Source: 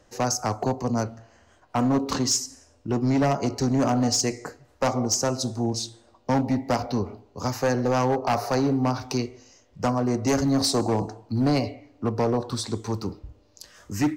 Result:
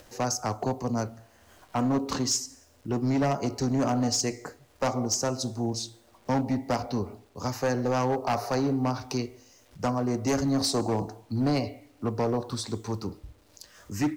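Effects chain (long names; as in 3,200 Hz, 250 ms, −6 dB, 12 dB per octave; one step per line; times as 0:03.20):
bit reduction 10 bits
upward compression, threshold −42 dBFS
level −3.5 dB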